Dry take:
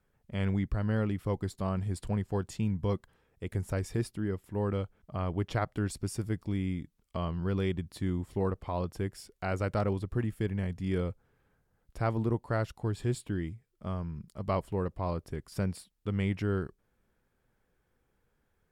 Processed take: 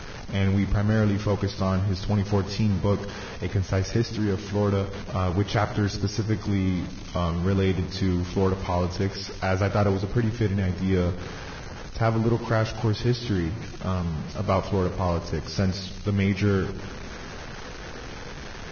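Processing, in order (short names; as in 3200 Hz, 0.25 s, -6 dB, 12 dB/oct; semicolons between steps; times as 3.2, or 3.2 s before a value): zero-crossing step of -37 dBFS; split-band echo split 490 Hz, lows 0.156 s, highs 84 ms, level -14 dB; gain +6 dB; Vorbis 16 kbps 16000 Hz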